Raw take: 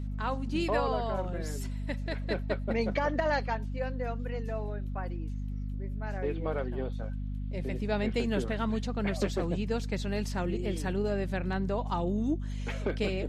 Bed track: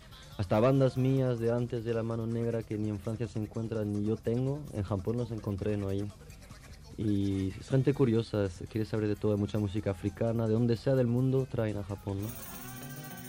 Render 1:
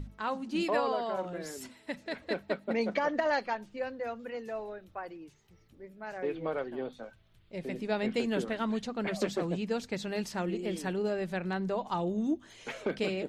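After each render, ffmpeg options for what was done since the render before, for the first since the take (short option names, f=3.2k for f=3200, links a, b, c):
-af "bandreject=f=50:t=h:w=6,bandreject=f=100:t=h:w=6,bandreject=f=150:t=h:w=6,bandreject=f=200:t=h:w=6,bandreject=f=250:t=h:w=6"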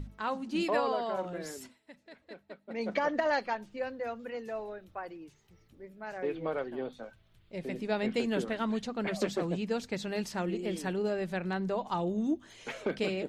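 -filter_complex "[0:a]asplit=3[a][b][c];[a]atrim=end=1.8,asetpts=PTS-STARTPTS,afade=t=out:st=1.52:d=0.28:silence=0.177828[d];[b]atrim=start=1.8:end=2.67,asetpts=PTS-STARTPTS,volume=-15dB[e];[c]atrim=start=2.67,asetpts=PTS-STARTPTS,afade=t=in:d=0.28:silence=0.177828[f];[d][e][f]concat=n=3:v=0:a=1"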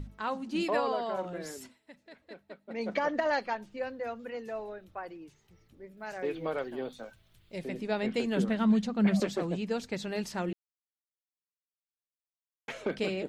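-filter_complex "[0:a]asettb=1/sr,asplit=3[a][b][c];[a]atrim=end=5.974[d];[b]atrim=start=5.97:end=7.64,asetpts=PTS-STARTPTS,afade=t=in:d=0.004:c=qsin,afade=t=out:st=1.666:d=0.004:c=qsin,highshelf=f=4.2k:g=10.5[e];[c]atrim=start=7.636[f];[d][e]acrossfade=d=0.004:c1=hsin:c2=qsin[g];[g][f]acrossfade=d=0.004:c1=qsin:c2=hsin,asettb=1/sr,asplit=3[h][i][j];[h]atrim=end=8.374[k];[i]atrim=start=8.37:end=9.2,asetpts=PTS-STARTPTS,afade=t=in:d=0.004:c=qsin,afade=t=out:st=0.826:d=0.004:c=qsin,equalizer=f=200:t=o:w=0.31:g=14.5[l];[j]atrim=start=9.196[m];[k][l]acrossfade=d=0.004:c1=hsin:c2=qsin[n];[n][m]acrossfade=d=0.004:c1=qsin:c2=hsin,asplit=3[o][p][q];[o]atrim=end=10.53,asetpts=PTS-STARTPTS,afade=t=out:st=10.526:d=0.004:c=hsin[r];[p]atrim=start=10.53:end=12.68,asetpts=PTS-STARTPTS,volume=0[s];[q]atrim=start=12.68,asetpts=PTS-STARTPTS,afade=t=in:d=0.004:c=hsin[t];[r][s][t]concat=n=3:v=0:a=1"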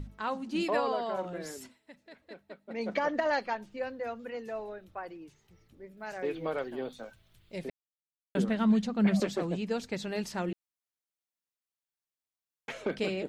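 -filter_complex "[0:a]asplit=3[a][b][c];[a]atrim=end=7.7,asetpts=PTS-STARTPTS,afade=t=out:st=7.696:d=0.004:c=hsin[d];[b]atrim=start=7.7:end=8.35,asetpts=PTS-STARTPTS,volume=0[e];[c]atrim=start=8.35,asetpts=PTS-STARTPTS,afade=t=in:d=0.004:c=hsin[f];[d][e][f]concat=n=3:v=0:a=1"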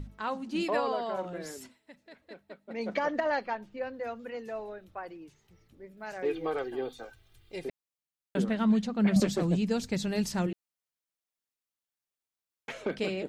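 -filter_complex "[0:a]asettb=1/sr,asplit=3[a][b][c];[a]atrim=end=3.204[d];[b]atrim=start=3.2:end=3.94,asetpts=PTS-STARTPTS,afade=t=in:d=0.004:c=qsin,afade=t=out:st=0.736:d=0.004:c=qsin,equalizer=f=8.7k:w=0.49:g=-8[e];[c]atrim=start=3.936[f];[d][e]acrossfade=d=0.004:c1=hsin:c2=qsin[g];[g][f]acrossfade=d=0.004:c1=qsin:c2=hsin,asettb=1/sr,asplit=3[h][i][j];[h]atrim=end=6.254[k];[i]atrim=start=6.25:end=7.69,asetpts=PTS-STARTPTS,afade=t=in:d=0.004:c=qsin,afade=t=out:st=1.436:d=0.004:c=qsin,aecho=1:1:2.5:0.65,atrim=end_sample=63504[l];[j]atrim=start=7.686[m];[k][l]acrossfade=d=0.004:c1=hsin:c2=qsin[n];[n][m]acrossfade=d=0.004:c1=qsin:c2=hsin,asettb=1/sr,asplit=3[o][p][q];[o]atrim=end=9.164[r];[p]atrim=start=9.16:end=10.47,asetpts=PTS-STARTPTS,afade=t=in:d=0.004:c=qsin,afade=t=out:st=1.306:d=0.004:c=qsin,bass=f=250:g=10,treble=f=4k:g=7[s];[q]atrim=start=10.466[t];[r][s]acrossfade=d=0.004:c1=hsin:c2=qsin[u];[u][t]acrossfade=d=0.004:c1=qsin:c2=hsin"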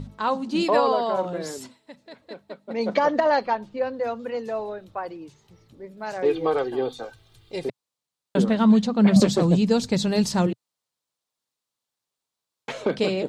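-af "equalizer=f=125:t=o:w=1:g=10,equalizer=f=250:t=o:w=1:g=5,equalizer=f=500:t=o:w=1:g=7,equalizer=f=1k:t=o:w=1:g=9,equalizer=f=4k:t=o:w=1:g=9,equalizer=f=8k:t=o:w=1:g=6"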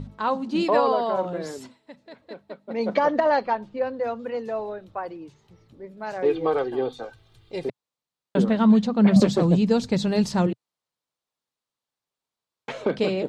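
-af "highshelf=f=4.9k:g=-9"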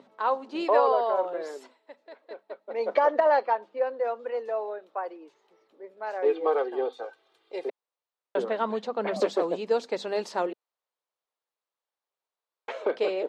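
-af "highpass=f=400:w=0.5412,highpass=f=400:w=1.3066,highshelf=f=3.2k:g=-11.5"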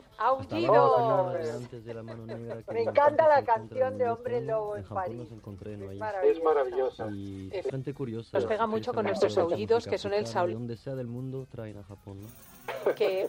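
-filter_complex "[1:a]volume=-8.5dB[a];[0:a][a]amix=inputs=2:normalize=0"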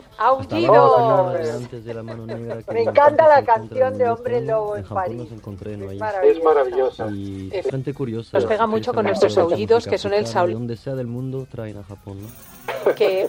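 -af "volume=9.5dB,alimiter=limit=-1dB:level=0:latency=1"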